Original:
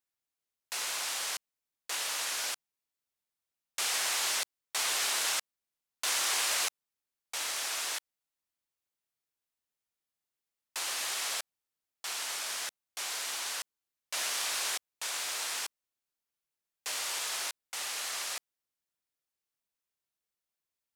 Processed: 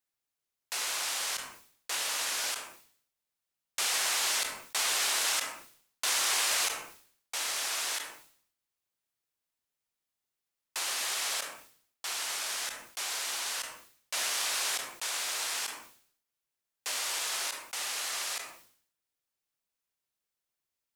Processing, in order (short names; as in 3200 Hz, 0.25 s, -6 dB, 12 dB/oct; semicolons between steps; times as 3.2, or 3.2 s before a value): 1.93–2.5 low shelf 120 Hz +11 dB; on a send at -16 dB: reverb RT60 0.35 s, pre-delay 7 ms; on the sum: sustainer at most 93 dB/s; gain +1.5 dB